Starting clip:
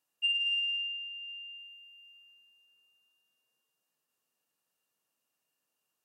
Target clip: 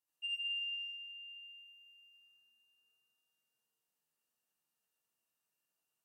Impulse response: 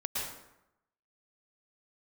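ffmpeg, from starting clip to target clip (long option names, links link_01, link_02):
-filter_complex "[0:a]highshelf=frequency=5800:gain=4.5[link_01];[1:a]atrim=start_sample=2205,asetrate=70560,aresample=44100[link_02];[link_01][link_02]afir=irnorm=-1:irlink=0,volume=-6.5dB"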